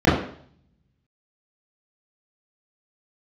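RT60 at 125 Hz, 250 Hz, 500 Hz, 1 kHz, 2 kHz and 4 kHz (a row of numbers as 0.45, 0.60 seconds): 0.95, 0.60, 0.60, 0.55, 0.55, 0.60 seconds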